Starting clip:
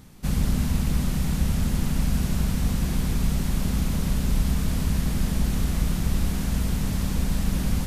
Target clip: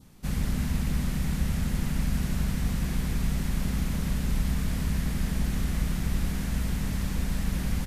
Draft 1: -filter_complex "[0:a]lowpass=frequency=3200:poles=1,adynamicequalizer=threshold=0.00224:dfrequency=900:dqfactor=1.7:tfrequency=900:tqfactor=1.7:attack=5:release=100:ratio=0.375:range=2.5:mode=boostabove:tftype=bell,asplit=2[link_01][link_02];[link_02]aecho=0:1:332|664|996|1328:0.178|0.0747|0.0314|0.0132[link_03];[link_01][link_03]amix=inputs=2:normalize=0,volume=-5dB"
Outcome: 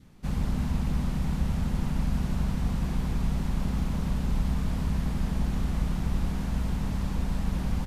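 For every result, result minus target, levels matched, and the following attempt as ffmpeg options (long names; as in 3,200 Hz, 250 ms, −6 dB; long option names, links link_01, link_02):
2,000 Hz band −4.0 dB; 4,000 Hz band −4.0 dB
-filter_complex "[0:a]lowpass=frequency=3200:poles=1,adynamicequalizer=threshold=0.00224:dfrequency=1900:dqfactor=1.7:tfrequency=1900:tqfactor=1.7:attack=5:release=100:ratio=0.375:range=2.5:mode=boostabove:tftype=bell,asplit=2[link_01][link_02];[link_02]aecho=0:1:332|664|996|1328:0.178|0.0747|0.0314|0.0132[link_03];[link_01][link_03]amix=inputs=2:normalize=0,volume=-5dB"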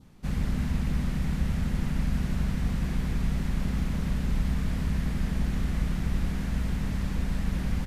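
4,000 Hz band −3.5 dB
-filter_complex "[0:a]adynamicequalizer=threshold=0.00224:dfrequency=1900:dqfactor=1.7:tfrequency=1900:tqfactor=1.7:attack=5:release=100:ratio=0.375:range=2.5:mode=boostabove:tftype=bell,asplit=2[link_01][link_02];[link_02]aecho=0:1:332|664|996|1328:0.178|0.0747|0.0314|0.0132[link_03];[link_01][link_03]amix=inputs=2:normalize=0,volume=-5dB"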